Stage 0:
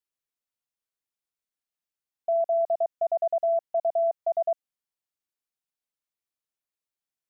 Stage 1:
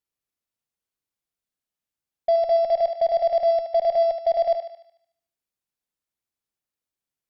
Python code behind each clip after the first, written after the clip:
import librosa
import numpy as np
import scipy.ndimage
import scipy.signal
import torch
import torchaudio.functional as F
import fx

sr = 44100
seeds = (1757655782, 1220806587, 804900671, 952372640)

y = fx.cheby_harmonics(x, sr, harmonics=(7, 8), levels_db=(-26, -38), full_scale_db=-19.5)
y = fx.low_shelf(y, sr, hz=430.0, db=8.0)
y = fx.echo_thinned(y, sr, ms=74, feedback_pct=55, hz=510.0, wet_db=-6.5)
y = y * 10.0 ** (3.5 / 20.0)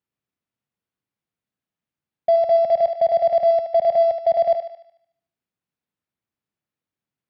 y = scipy.signal.sosfilt(scipy.signal.bessel(2, 170.0, 'highpass', norm='mag', fs=sr, output='sos'), x)
y = fx.bass_treble(y, sr, bass_db=13, treble_db=-12)
y = y * 10.0 ** (3.0 / 20.0)